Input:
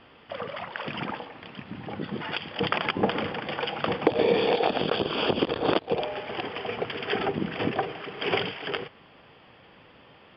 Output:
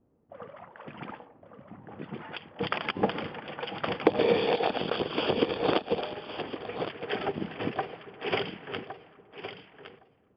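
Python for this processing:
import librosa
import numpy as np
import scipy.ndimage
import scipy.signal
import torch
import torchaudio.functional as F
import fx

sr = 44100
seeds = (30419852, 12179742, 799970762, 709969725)

y = fx.env_lowpass(x, sr, base_hz=330.0, full_db=-23.0)
y = fx.echo_feedback(y, sr, ms=1113, feedback_pct=15, wet_db=-7)
y = fx.upward_expand(y, sr, threshold_db=-36.0, expansion=1.5)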